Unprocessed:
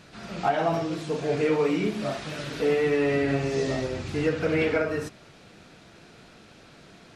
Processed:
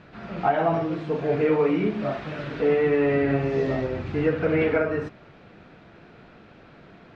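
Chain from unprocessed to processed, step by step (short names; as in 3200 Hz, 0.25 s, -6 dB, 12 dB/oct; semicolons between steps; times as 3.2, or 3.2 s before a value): LPF 2200 Hz 12 dB/oct; gain +2.5 dB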